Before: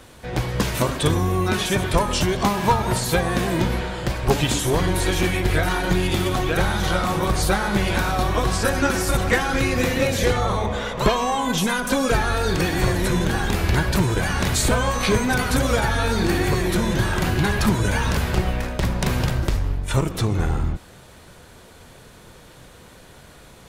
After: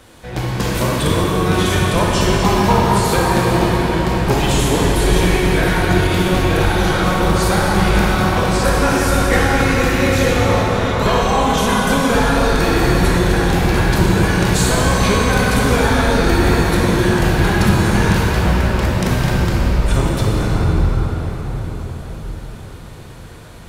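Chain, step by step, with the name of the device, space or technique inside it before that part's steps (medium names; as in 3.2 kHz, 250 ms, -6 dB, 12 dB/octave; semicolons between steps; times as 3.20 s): cathedral (reverberation RT60 5.8 s, pre-delay 21 ms, DRR -4.5 dB)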